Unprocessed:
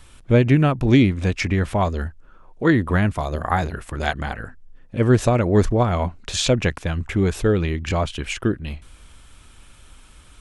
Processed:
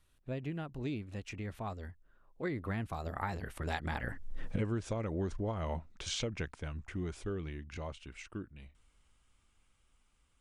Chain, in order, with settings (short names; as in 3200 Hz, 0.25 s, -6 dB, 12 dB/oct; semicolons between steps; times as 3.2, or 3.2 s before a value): Doppler pass-by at 4.45, 28 m/s, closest 1.8 m; compressor 10:1, threshold -45 dBFS, peak gain reduction 22 dB; gain +13.5 dB